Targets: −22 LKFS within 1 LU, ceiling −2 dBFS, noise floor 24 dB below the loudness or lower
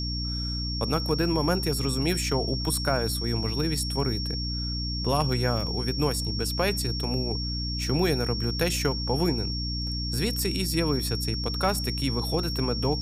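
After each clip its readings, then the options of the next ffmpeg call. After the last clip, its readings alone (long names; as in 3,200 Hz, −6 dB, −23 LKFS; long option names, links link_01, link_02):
mains hum 60 Hz; hum harmonics up to 300 Hz; level of the hum −29 dBFS; interfering tone 5,500 Hz; level of the tone −32 dBFS; integrated loudness −27.0 LKFS; sample peak −10.5 dBFS; target loudness −22.0 LKFS
→ -af "bandreject=frequency=60:width_type=h:width=4,bandreject=frequency=120:width_type=h:width=4,bandreject=frequency=180:width_type=h:width=4,bandreject=frequency=240:width_type=h:width=4,bandreject=frequency=300:width_type=h:width=4"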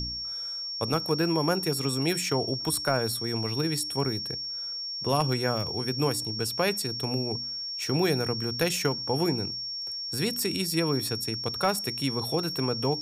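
mains hum none found; interfering tone 5,500 Hz; level of the tone −32 dBFS
→ -af "bandreject=frequency=5500:width=30"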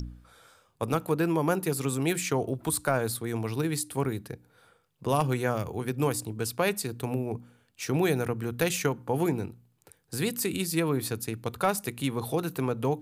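interfering tone none found; integrated loudness −29.5 LKFS; sample peak −12.0 dBFS; target loudness −22.0 LKFS
→ -af "volume=7.5dB"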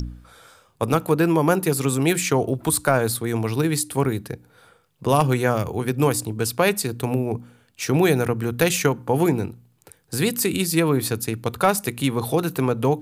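integrated loudness −22.0 LKFS; sample peak −4.5 dBFS; background noise floor −60 dBFS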